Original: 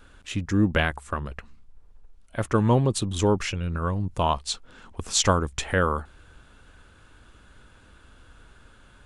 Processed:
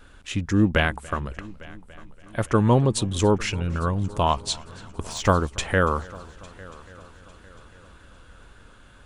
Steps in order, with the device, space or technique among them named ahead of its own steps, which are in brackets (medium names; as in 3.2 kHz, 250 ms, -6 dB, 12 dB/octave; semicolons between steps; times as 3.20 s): 5.08–5.59 s: de-esser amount 75%; multi-head tape echo (multi-head delay 284 ms, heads first and third, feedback 56%, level -23 dB; wow and flutter 17 cents); trim +2 dB